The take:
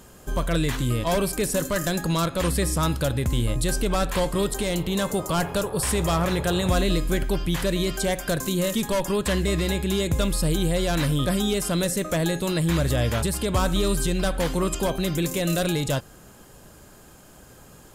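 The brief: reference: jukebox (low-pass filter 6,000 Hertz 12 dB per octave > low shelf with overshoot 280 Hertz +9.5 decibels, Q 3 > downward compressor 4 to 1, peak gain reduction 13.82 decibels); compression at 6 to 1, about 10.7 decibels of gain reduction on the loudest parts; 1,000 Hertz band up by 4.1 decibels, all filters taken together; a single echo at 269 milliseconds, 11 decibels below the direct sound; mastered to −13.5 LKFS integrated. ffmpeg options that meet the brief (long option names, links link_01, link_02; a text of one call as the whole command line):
ffmpeg -i in.wav -af "equalizer=frequency=1000:width_type=o:gain=6.5,acompressor=threshold=-28dB:ratio=6,lowpass=6000,lowshelf=frequency=280:width_type=q:width=3:gain=9.5,aecho=1:1:269:0.282,acompressor=threshold=-30dB:ratio=4,volume=19dB" out.wav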